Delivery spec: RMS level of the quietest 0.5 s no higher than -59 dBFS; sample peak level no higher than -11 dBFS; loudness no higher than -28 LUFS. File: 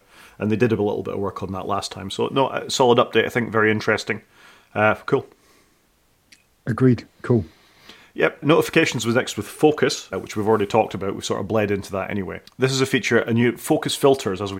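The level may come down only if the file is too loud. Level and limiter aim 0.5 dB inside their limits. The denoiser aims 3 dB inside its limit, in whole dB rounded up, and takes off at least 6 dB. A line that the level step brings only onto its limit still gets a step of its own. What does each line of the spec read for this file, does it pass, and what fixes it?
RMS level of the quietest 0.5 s -61 dBFS: OK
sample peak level -3.0 dBFS: fail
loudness -21.0 LUFS: fail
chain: gain -7.5 dB; limiter -11.5 dBFS

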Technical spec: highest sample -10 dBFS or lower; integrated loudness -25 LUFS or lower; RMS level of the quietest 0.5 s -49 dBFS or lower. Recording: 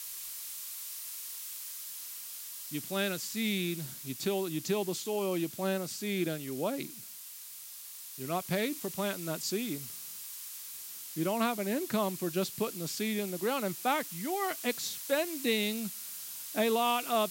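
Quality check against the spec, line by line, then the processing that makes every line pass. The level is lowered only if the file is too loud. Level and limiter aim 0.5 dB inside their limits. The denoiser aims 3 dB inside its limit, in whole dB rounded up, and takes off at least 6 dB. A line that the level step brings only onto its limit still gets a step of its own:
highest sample -16.0 dBFS: OK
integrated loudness -34.0 LUFS: OK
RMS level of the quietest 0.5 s -47 dBFS: fail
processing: denoiser 6 dB, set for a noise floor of -47 dBFS

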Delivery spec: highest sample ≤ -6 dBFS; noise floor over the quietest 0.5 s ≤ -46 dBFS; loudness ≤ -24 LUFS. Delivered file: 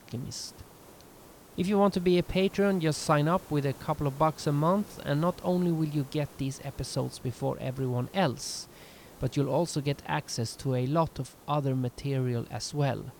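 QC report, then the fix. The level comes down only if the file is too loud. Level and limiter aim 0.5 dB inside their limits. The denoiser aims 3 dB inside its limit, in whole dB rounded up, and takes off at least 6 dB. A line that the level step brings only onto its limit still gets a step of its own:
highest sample -11.0 dBFS: OK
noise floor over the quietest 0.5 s -52 dBFS: OK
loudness -29.5 LUFS: OK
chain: none

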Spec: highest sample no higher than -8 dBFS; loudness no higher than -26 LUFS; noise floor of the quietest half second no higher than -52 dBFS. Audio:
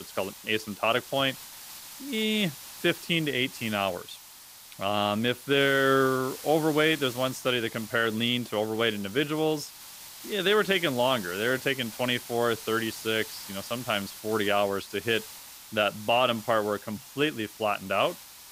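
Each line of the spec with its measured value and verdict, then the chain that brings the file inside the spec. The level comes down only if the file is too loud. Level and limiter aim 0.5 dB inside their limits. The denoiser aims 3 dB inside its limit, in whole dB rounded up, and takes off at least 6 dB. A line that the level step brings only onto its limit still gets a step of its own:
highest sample -11.0 dBFS: OK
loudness -27.0 LUFS: OK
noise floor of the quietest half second -49 dBFS: fail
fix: denoiser 6 dB, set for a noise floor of -49 dBFS

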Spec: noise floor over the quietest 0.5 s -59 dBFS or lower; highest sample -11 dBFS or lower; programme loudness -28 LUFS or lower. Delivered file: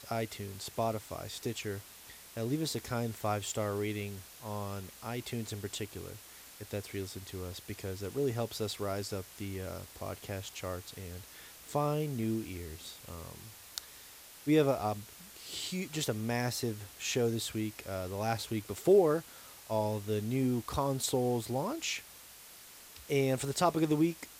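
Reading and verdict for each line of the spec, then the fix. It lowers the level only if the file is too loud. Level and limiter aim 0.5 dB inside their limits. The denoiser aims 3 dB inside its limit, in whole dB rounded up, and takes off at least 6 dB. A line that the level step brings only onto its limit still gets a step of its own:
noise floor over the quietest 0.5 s -53 dBFS: fail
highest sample -12.0 dBFS: OK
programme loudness -34.5 LUFS: OK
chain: denoiser 9 dB, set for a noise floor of -53 dBFS

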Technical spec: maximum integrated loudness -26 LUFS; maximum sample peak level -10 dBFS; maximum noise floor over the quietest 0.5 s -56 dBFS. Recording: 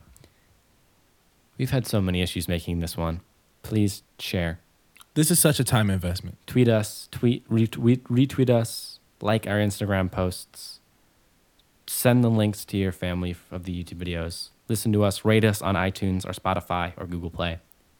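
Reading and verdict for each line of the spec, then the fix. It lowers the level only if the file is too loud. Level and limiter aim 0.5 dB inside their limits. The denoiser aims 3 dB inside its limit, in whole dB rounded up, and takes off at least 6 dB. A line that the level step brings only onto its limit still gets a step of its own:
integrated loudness -25.0 LUFS: fail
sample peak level -4.0 dBFS: fail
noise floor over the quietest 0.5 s -63 dBFS: OK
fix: gain -1.5 dB; limiter -10.5 dBFS

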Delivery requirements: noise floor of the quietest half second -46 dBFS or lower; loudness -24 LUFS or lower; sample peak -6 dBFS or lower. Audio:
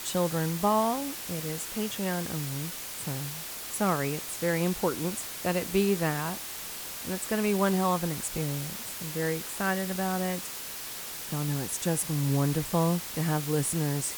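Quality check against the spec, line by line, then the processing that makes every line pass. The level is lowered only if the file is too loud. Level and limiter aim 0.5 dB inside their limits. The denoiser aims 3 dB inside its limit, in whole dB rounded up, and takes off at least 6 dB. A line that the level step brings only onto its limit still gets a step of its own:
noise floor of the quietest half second -39 dBFS: fail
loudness -29.5 LUFS: OK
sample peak -11.5 dBFS: OK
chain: denoiser 10 dB, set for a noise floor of -39 dBFS

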